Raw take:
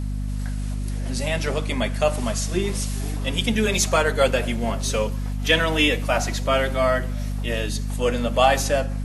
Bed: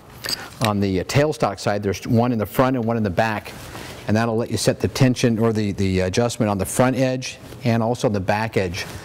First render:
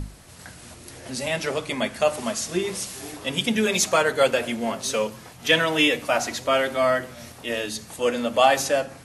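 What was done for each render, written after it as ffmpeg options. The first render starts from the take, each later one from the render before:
-af "bandreject=f=50:t=h:w=6,bandreject=f=100:t=h:w=6,bandreject=f=150:t=h:w=6,bandreject=f=200:t=h:w=6,bandreject=f=250:t=h:w=6"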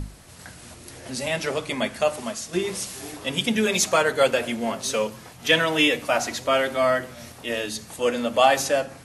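-filter_complex "[0:a]asplit=2[s0][s1];[s0]atrim=end=2.53,asetpts=PTS-STARTPTS,afade=t=out:st=1.91:d=0.62:silence=0.473151[s2];[s1]atrim=start=2.53,asetpts=PTS-STARTPTS,afade=t=in:d=0.004:c=hsin:silence=0.473151[s3];[s2][s3]concat=n=2:v=0:a=1"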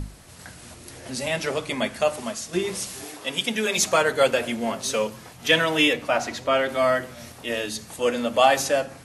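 -filter_complex "[0:a]asettb=1/sr,asplit=3[s0][s1][s2];[s0]atrim=end=3.044[s3];[s1]atrim=start=3.04:end=3.78,asetpts=PTS-STARTPTS,afade=t=in:d=0.004:c=qsin,afade=t=out:st=0.736:d=0.004:c=qsin,highpass=f=390:p=1[s4];[s2]atrim=start=3.776[s5];[s3][s4]acrossfade=d=0.004:c1=hsin:c2=qsin[s6];[s6][s5]acrossfade=d=0.004:c1=qsin:c2=hsin,asettb=1/sr,asplit=3[s7][s8][s9];[s7]atrim=end=5.934[s10];[s8]atrim=start=5.93:end=6.69,asetpts=PTS-STARTPTS,afade=t=in:d=0.004:c=qsin,afade=t=out:st=0.756:d=0.004:c=qsin,highshelf=f=6400:g=-11[s11];[s9]atrim=start=6.686[s12];[s10][s11]acrossfade=d=0.004:c1=hsin:c2=qsin[s13];[s13][s12]acrossfade=d=0.004:c1=qsin:c2=hsin"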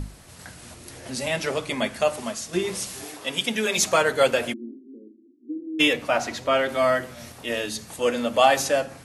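-filter_complex "[0:a]asplit=3[s0][s1][s2];[s0]afade=t=out:st=4.52:d=0.02[s3];[s1]asuperpass=centerf=300:order=8:qfactor=2.4,afade=t=in:st=4.52:d=0.02,afade=t=out:st=5.79:d=0.02[s4];[s2]afade=t=in:st=5.79:d=0.02[s5];[s3][s4][s5]amix=inputs=3:normalize=0"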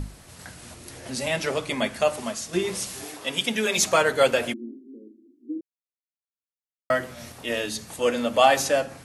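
-filter_complex "[0:a]asplit=3[s0][s1][s2];[s0]atrim=end=5.61,asetpts=PTS-STARTPTS,afade=t=out:st=5.606:d=0.004:c=hsin[s3];[s1]atrim=start=5.61:end=6.9,asetpts=PTS-STARTPTS,volume=0[s4];[s2]atrim=start=6.9,asetpts=PTS-STARTPTS,afade=t=in:d=0.004:c=hsin[s5];[s3][s4][s5]concat=n=3:v=0:a=1"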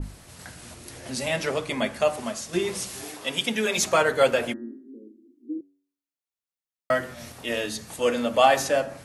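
-af "bandreject=f=94.52:t=h:w=4,bandreject=f=189.04:t=h:w=4,bandreject=f=283.56:t=h:w=4,bandreject=f=378.08:t=h:w=4,bandreject=f=472.6:t=h:w=4,bandreject=f=567.12:t=h:w=4,bandreject=f=661.64:t=h:w=4,bandreject=f=756.16:t=h:w=4,bandreject=f=850.68:t=h:w=4,bandreject=f=945.2:t=h:w=4,bandreject=f=1039.72:t=h:w=4,bandreject=f=1134.24:t=h:w=4,bandreject=f=1228.76:t=h:w=4,bandreject=f=1323.28:t=h:w=4,bandreject=f=1417.8:t=h:w=4,bandreject=f=1512.32:t=h:w=4,bandreject=f=1606.84:t=h:w=4,bandreject=f=1701.36:t=h:w=4,bandreject=f=1795.88:t=h:w=4,bandreject=f=1890.4:t=h:w=4,adynamicequalizer=threshold=0.0141:dfrequency=2400:dqfactor=0.7:tfrequency=2400:tqfactor=0.7:attack=5:release=100:ratio=0.375:range=2:mode=cutabove:tftype=highshelf"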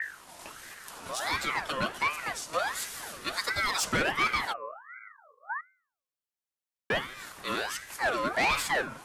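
-filter_complex "[0:a]acrossover=split=210[s0][s1];[s1]asoftclip=type=tanh:threshold=0.106[s2];[s0][s2]amix=inputs=2:normalize=0,aeval=exprs='val(0)*sin(2*PI*1300*n/s+1300*0.4/1.4*sin(2*PI*1.4*n/s))':c=same"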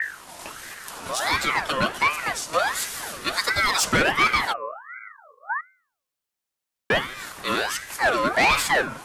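-af "volume=2.37"

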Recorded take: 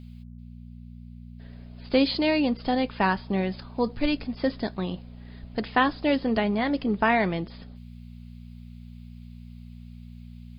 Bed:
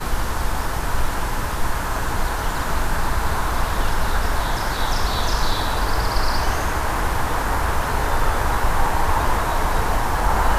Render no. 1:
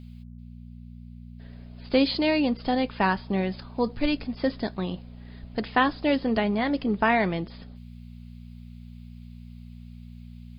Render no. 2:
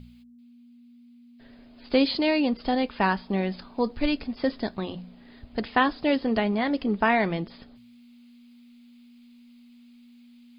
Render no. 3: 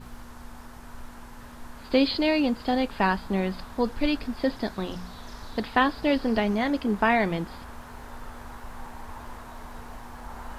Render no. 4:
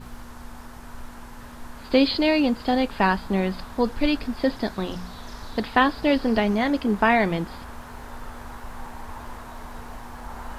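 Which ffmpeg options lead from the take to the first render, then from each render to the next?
-af anull
-af "bandreject=f=60:t=h:w=4,bandreject=f=120:t=h:w=4,bandreject=f=180:t=h:w=4"
-filter_complex "[1:a]volume=0.0841[s0];[0:a][s0]amix=inputs=2:normalize=0"
-af "volume=1.41"

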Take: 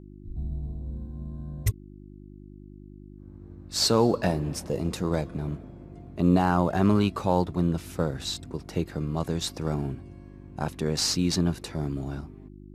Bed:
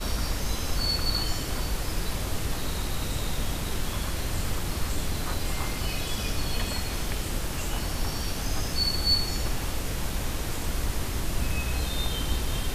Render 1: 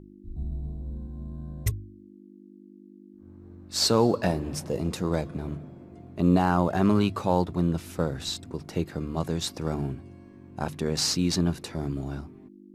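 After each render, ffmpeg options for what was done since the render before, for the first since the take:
-af "bandreject=f=50:t=h:w=4,bandreject=f=100:t=h:w=4,bandreject=f=150:t=h:w=4"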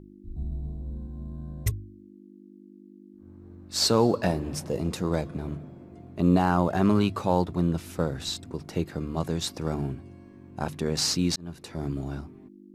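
-filter_complex "[0:a]asplit=2[s0][s1];[s0]atrim=end=11.36,asetpts=PTS-STARTPTS,afade=t=out:st=11.356:d=0.004:c=hsin[s2];[s1]atrim=start=11.36,asetpts=PTS-STARTPTS,afade=t=in:d=0.51[s3];[s2][s3]concat=n=2:v=0:a=1"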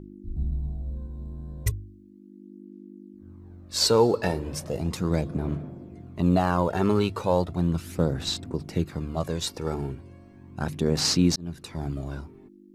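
-af "aphaser=in_gain=1:out_gain=1:delay=2.3:decay=0.44:speed=0.36:type=sinusoidal"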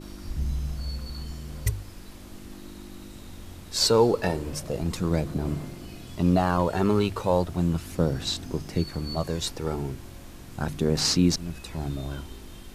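-filter_complex "[1:a]volume=0.168[s0];[0:a][s0]amix=inputs=2:normalize=0"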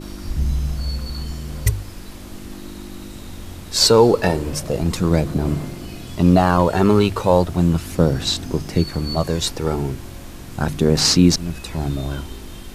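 -af "volume=2.51,alimiter=limit=0.891:level=0:latency=1"

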